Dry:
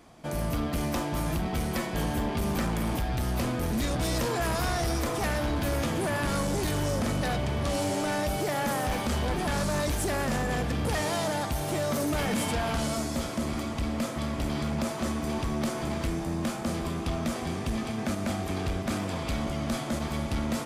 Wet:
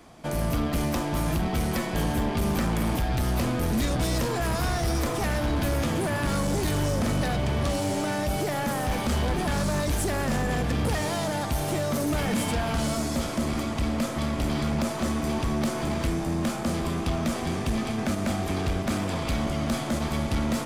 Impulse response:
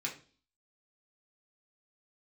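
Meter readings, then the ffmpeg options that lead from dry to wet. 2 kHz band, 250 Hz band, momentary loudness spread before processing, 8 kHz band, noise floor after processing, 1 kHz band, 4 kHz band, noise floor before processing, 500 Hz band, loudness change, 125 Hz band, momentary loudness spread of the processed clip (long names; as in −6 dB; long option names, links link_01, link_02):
+1.5 dB, +3.0 dB, 3 LU, +1.5 dB, −31 dBFS, +1.5 dB, +1.5 dB, −34 dBFS, +1.5 dB, +2.5 dB, +3.5 dB, 2 LU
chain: -filter_complex "[0:a]aeval=exprs='0.0668*(cos(1*acos(clip(val(0)/0.0668,-1,1)))-cos(1*PI/2))+0.00299*(cos(6*acos(clip(val(0)/0.0668,-1,1)))-cos(6*PI/2))':channel_layout=same,acrossover=split=280[link_01][link_02];[link_02]acompressor=threshold=-30dB:ratio=6[link_03];[link_01][link_03]amix=inputs=2:normalize=0,volume=3.5dB"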